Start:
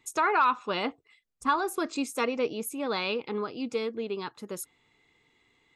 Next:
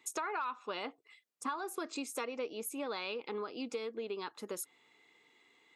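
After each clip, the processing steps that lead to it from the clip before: high-pass 290 Hz 12 dB/octave; compression 4:1, threshold -38 dBFS, peak gain reduction 15.5 dB; trim +1 dB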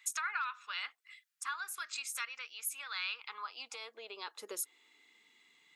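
amplifier tone stack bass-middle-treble 5-5-5; high-pass sweep 1.5 kHz -> 160 Hz, 3.01–5.60 s; trim +10 dB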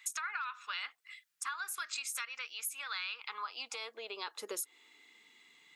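compression 5:1, threshold -39 dBFS, peak gain reduction 8 dB; trim +4 dB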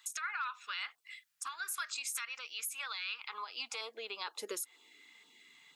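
peak limiter -29 dBFS, peak gain reduction 7 dB; LFO notch saw down 2.1 Hz 240–2400 Hz; trim +2 dB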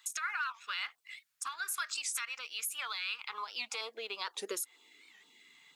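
in parallel at -9 dB: crossover distortion -53.5 dBFS; on the sum: warped record 78 rpm, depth 160 cents

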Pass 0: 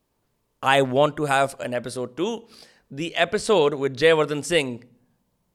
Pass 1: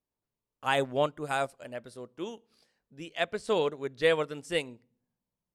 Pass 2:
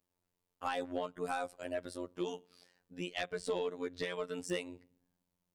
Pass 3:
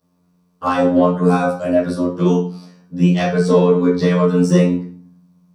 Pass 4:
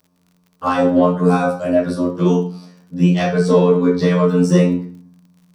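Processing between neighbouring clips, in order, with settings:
upward expansion 1.5:1, over -37 dBFS; trim -7 dB
compression 16:1, threshold -34 dBFS, peak gain reduction 15.5 dB; robot voice 89 Hz; saturation -29 dBFS, distortion -15 dB; trim +5.5 dB
reverberation RT60 0.45 s, pre-delay 3 ms, DRR -13 dB; trim +3 dB
crackle 51 per s -41 dBFS

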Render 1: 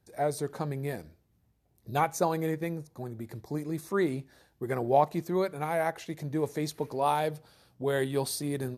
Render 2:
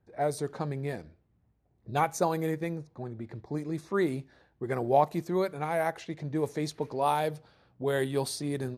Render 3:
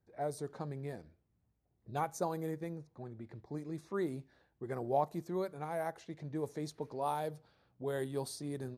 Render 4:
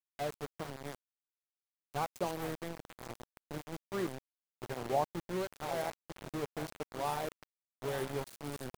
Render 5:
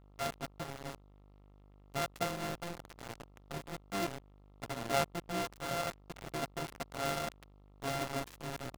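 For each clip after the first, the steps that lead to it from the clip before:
level-controlled noise filter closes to 1.9 kHz, open at -25 dBFS
dynamic bell 2.5 kHz, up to -7 dB, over -50 dBFS, Q 1.2; trim -8 dB
backward echo that repeats 445 ms, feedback 55%, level -10.5 dB; mains buzz 120 Hz, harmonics 5, -55 dBFS -5 dB/octave; small samples zeroed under -37 dBFS
sorted samples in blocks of 64 samples; mains buzz 50 Hz, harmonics 27, -60 dBFS -6 dB/octave; delay time shaken by noise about 2.2 kHz, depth 0.038 ms

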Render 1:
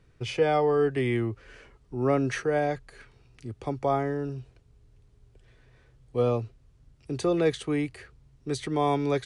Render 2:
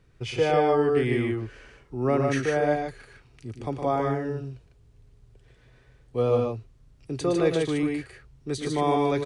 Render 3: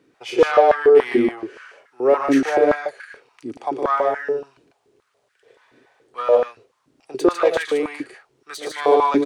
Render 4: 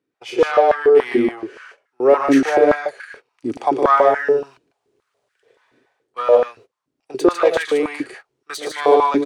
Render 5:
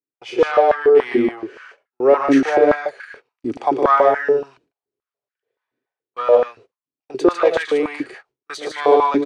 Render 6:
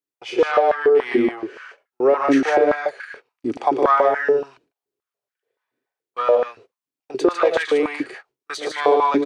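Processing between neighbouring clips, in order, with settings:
multi-tap echo 113/150 ms -7.5/-3.5 dB
self-modulated delay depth 0.096 ms; step-sequenced high-pass 7 Hz 290–1600 Hz; trim +3 dB
gate -44 dBFS, range -17 dB; level rider gain up to 14.5 dB; trim -1 dB
distance through air 60 m; gate with hold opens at -43 dBFS
bass shelf 190 Hz -5.5 dB; compression, threshold -13 dBFS, peak gain reduction 6 dB; trim +1.5 dB

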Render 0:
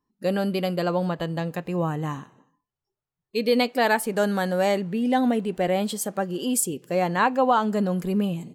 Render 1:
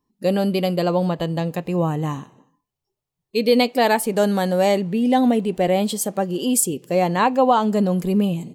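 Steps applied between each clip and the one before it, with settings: peaking EQ 1.5 kHz -7.5 dB 0.7 oct; trim +5 dB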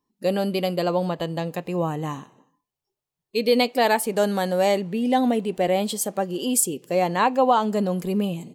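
bass shelf 180 Hz -8.5 dB; trim -1.5 dB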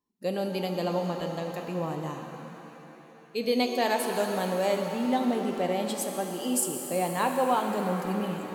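pitch-shifted reverb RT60 3.4 s, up +7 st, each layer -8 dB, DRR 4 dB; trim -7.5 dB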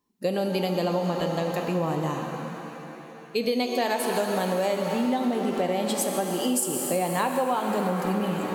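compression, threshold -30 dBFS, peak gain reduction 10 dB; trim +8 dB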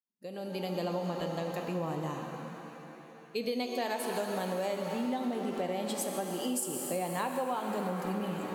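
fade-in on the opening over 0.75 s; trim -8 dB

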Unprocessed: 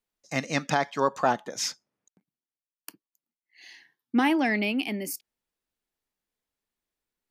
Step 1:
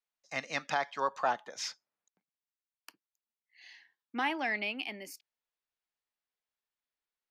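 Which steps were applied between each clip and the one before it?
three-band isolator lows -13 dB, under 560 Hz, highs -13 dB, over 5.7 kHz; trim -4.5 dB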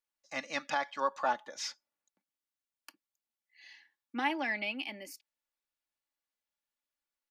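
comb 3.5 ms, depth 57%; trim -2 dB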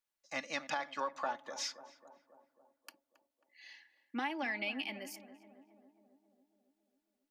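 compression, threshold -33 dBFS, peak gain reduction 8.5 dB; tape echo 272 ms, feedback 72%, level -11.5 dB, low-pass 1.1 kHz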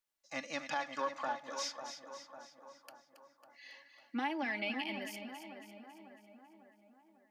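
harmonic-percussive split percussive -6 dB; two-band feedback delay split 1.5 kHz, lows 549 ms, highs 275 ms, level -9 dB; trim +2.5 dB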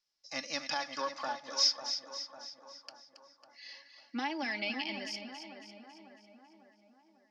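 resonant low-pass 5.2 kHz, resonance Q 7.3

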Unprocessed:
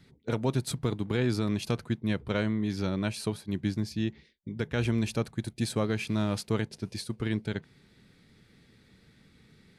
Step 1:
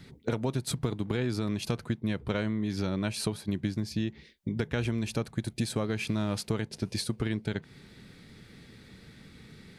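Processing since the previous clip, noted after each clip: compression, threshold -35 dBFS, peak gain reduction 12 dB; trim +8 dB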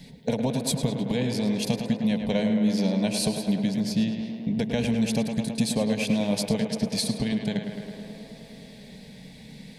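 static phaser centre 350 Hz, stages 6; tape echo 106 ms, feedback 89%, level -6 dB, low-pass 3.4 kHz; trim +7.5 dB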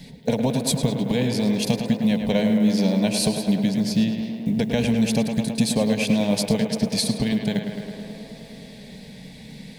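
block-companded coder 7-bit; trim +4 dB

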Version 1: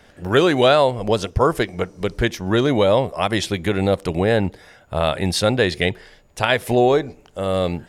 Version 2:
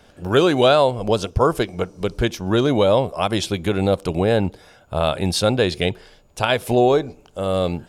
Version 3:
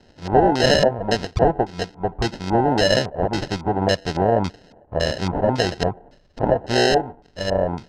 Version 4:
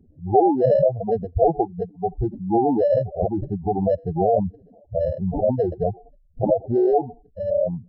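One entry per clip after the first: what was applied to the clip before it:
peaking EQ 1.9 kHz -10 dB 0.31 oct
sample-and-hold 38×; LFO low-pass square 1.8 Hz 870–5000 Hz; trim -2.5 dB
spectral contrast enhancement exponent 4

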